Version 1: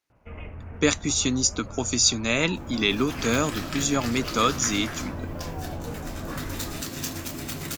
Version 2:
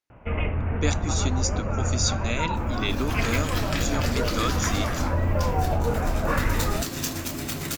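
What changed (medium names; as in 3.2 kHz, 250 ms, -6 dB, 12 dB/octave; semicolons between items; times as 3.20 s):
speech -7.5 dB; first sound +11.0 dB; reverb: on, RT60 1.6 s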